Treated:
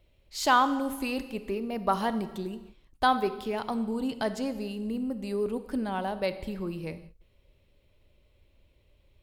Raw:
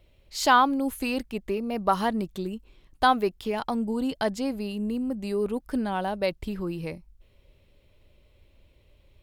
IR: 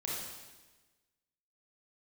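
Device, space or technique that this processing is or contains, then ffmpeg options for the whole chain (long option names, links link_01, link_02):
keyed gated reverb: -filter_complex "[0:a]asplit=3[link_01][link_02][link_03];[1:a]atrim=start_sample=2205[link_04];[link_02][link_04]afir=irnorm=-1:irlink=0[link_05];[link_03]apad=whole_len=406956[link_06];[link_05][link_06]sidechaingate=range=-33dB:threshold=-48dB:ratio=16:detection=peak,volume=-12dB[link_07];[link_01][link_07]amix=inputs=2:normalize=0,volume=-4.5dB"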